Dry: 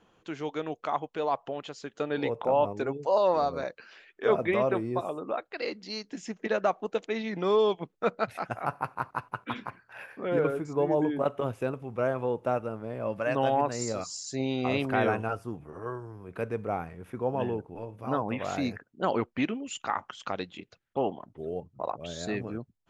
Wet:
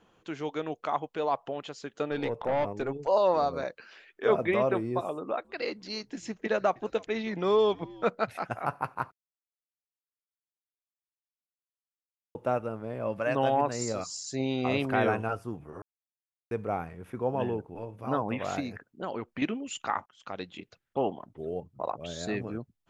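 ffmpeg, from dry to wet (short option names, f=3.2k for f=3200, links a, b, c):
-filter_complex "[0:a]asettb=1/sr,asplit=3[a][b][c];[a]atrim=end=2.114[d];[b]atrim=start=2.11:end=3.08,asetpts=PTS-STARTPTS,afade=t=in:d=0.004:c=qsin,afade=t=out:st=0.966:d=0.004:c=qsin,aeval=exprs='(tanh(12.6*val(0)+0.3)-tanh(0.3))/12.6':c=same[e];[c]atrim=start=3.076[f];[d][e]acrossfade=d=0.004:c1=hsin:c2=qsin[g];[g][f]acrossfade=d=0.004:c1=qsin:c2=hsin,asettb=1/sr,asplit=3[h][i][j];[h]atrim=end=5.134[k];[i]atrim=start=5.13:end=8.04,asetpts=PTS-STARTPTS,afade=t=in:d=0.004:c=qsin,afade=t=out:st=2.906:d=0.004:c=qsin,asplit=4[l][m][n][o];[m]adelay=314,afreqshift=-89,volume=-23.5dB[p];[n]adelay=628,afreqshift=-178,volume=-29.7dB[q];[o]adelay=942,afreqshift=-267,volume=-35.9dB[r];[l][p][q][r]amix=inputs=4:normalize=0,atrim=end_sample=128331[s];[j]atrim=start=8.036[t];[k][s]acrossfade=d=0.004:c1=hsin:c2=qsin[u];[u][t]acrossfade=d=0.004:c1=qsin:c2=hsin,asettb=1/sr,asplit=3[v][w][x];[v]atrim=end=18.604[y];[w]atrim=start=18.6:end=19.42,asetpts=PTS-STARTPTS,afade=t=in:d=0.004:c=qsin,afade=t=out:st=0.816:d=0.004:c=qsin,acompressor=threshold=-36dB:ratio=2:attack=3.2:release=140:knee=1:detection=peak[z];[x]atrim=start=19.416[aa];[y][z]acrossfade=d=0.004:c1=hsin:c2=qsin[ab];[ab][aa]acrossfade=d=0.004:c1=qsin:c2=hsin,asplit=6[ac][ad][ae][af][ag][ah];[ac]atrim=end=9.12,asetpts=PTS-STARTPTS,afade=t=out:st=9.116:d=0.004:c=hsin[ai];[ad]atrim=start=9.12:end=12.35,asetpts=PTS-STARTPTS,volume=0[aj];[ae]atrim=start=12.35:end=15.82,asetpts=PTS-STARTPTS,afade=t=in:d=0.004:c=hsin,afade=t=out:st=3.466:d=0.004:c=hsin[ak];[af]atrim=start=15.82:end=16.51,asetpts=PTS-STARTPTS,volume=0[al];[ag]atrim=start=16.51:end=20.06,asetpts=PTS-STARTPTS,afade=t=in:d=0.004:c=hsin,afade=t=out:st=3.546:d=0.004:c=hsin[am];[ah]atrim=start=20.06,asetpts=PTS-STARTPTS,afade=t=in:d=0.49[an];[ai][aj][ak][al][am][an]concat=n=6:v=0:a=1"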